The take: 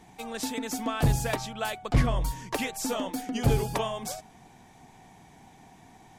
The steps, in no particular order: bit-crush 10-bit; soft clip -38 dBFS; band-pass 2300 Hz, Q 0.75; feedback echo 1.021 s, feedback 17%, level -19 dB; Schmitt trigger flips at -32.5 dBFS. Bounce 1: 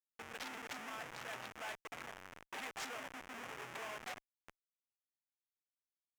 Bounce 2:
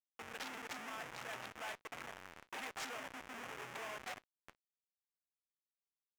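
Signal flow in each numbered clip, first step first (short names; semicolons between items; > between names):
bit-crush > feedback echo > Schmitt trigger > band-pass > soft clip; feedback echo > Schmitt trigger > bit-crush > band-pass > soft clip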